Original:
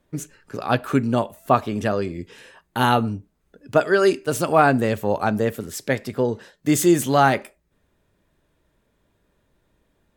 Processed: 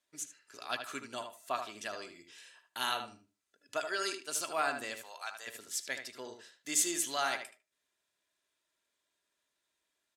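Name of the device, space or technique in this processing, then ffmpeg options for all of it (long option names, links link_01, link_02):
piezo pickup straight into a mixer: -filter_complex "[0:a]asplit=3[link_01][link_02][link_03];[link_01]afade=type=out:start_time=4.96:duration=0.02[link_04];[link_02]highpass=950,afade=type=in:start_time=4.96:duration=0.02,afade=type=out:start_time=5.46:duration=0.02[link_05];[link_03]afade=type=in:start_time=5.46:duration=0.02[link_06];[link_04][link_05][link_06]amix=inputs=3:normalize=0,lowpass=7200,aderivative,aecho=1:1:3:0.33,asplit=2[link_07][link_08];[link_08]adelay=76,lowpass=frequency=2800:poles=1,volume=-6.5dB,asplit=2[link_09][link_10];[link_10]adelay=76,lowpass=frequency=2800:poles=1,volume=0.2,asplit=2[link_11][link_12];[link_12]adelay=76,lowpass=frequency=2800:poles=1,volume=0.2[link_13];[link_07][link_09][link_11][link_13]amix=inputs=4:normalize=0"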